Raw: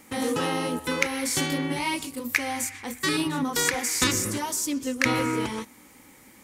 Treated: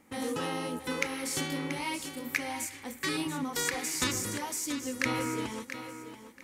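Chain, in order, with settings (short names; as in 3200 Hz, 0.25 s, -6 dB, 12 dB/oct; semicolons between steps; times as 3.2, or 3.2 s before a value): thinning echo 0.683 s, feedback 30%, high-pass 180 Hz, level -10 dB; mismatched tape noise reduction decoder only; gain -7 dB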